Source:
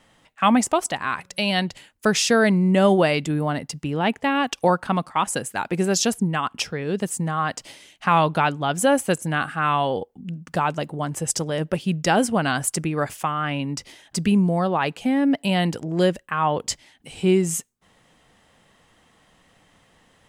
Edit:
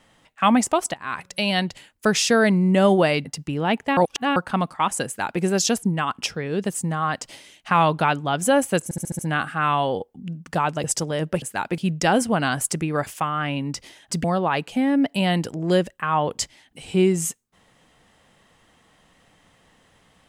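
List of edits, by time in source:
0.94–1.2 fade in, from -19 dB
3.25–3.61 cut
4.33–4.72 reverse
5.42–5.78 copy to 11.81
9.2 stutter 0.07 s, 6 plays
10.85–11.23 cut
14.27–14.53 cut

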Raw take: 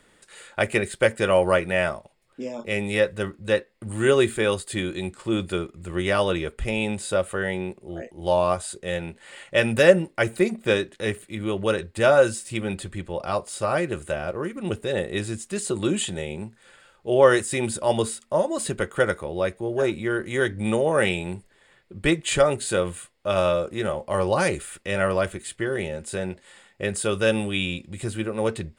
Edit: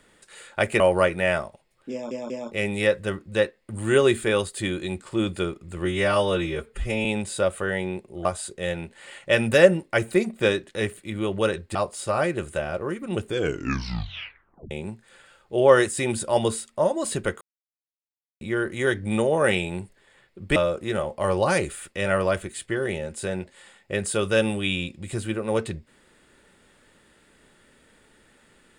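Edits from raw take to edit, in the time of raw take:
0.8–1.31 cut
2.43 stutter 0.19 s, 3 plays
5.98–6.78 stretch 1.5×
7.98–8.5 cut
12–13.29 cut
14.76 tape stop 1.49 s
18.95–19.95 mute
22.1–23.46 cut

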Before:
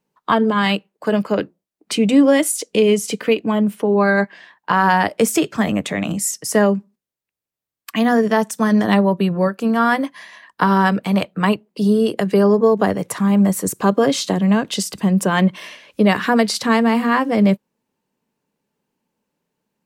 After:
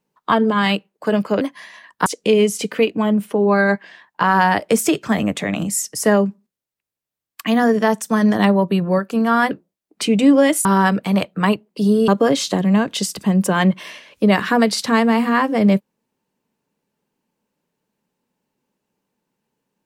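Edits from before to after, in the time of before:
1.41–2.55 swap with 10–10.65
12.08–13.85 cut

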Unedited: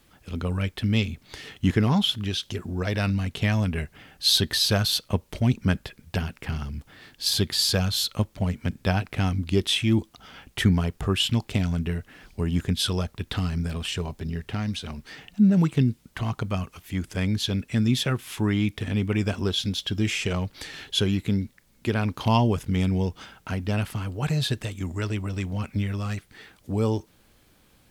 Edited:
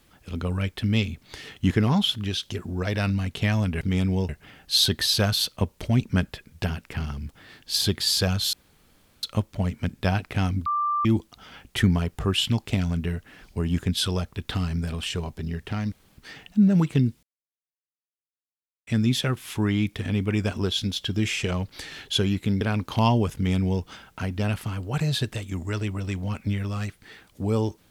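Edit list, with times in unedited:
8.05 insert room tone 0.70 s
9.48–9.87 bleep 1180 Hz -21.5 dBFS
14.74–15 room tone
16.05–17.69 mute
21.43–21.9 cut
22.64–23.12 copy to 3.81

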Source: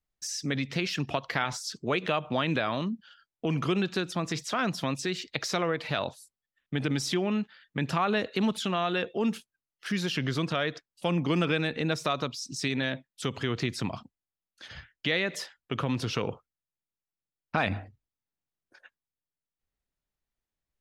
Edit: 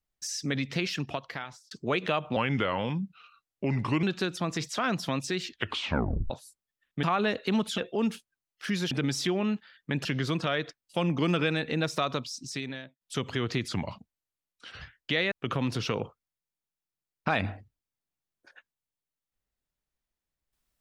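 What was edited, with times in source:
0.84–1.71 fade out
2.36–3.78 speed 85%
5.19 tape stop 0.86 s
6.78–7.92 move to 10.13
8.67–9 cut
12.32–13.09 fade out linear
13.76–14.77 speed 89%
15.27–15.59 cut

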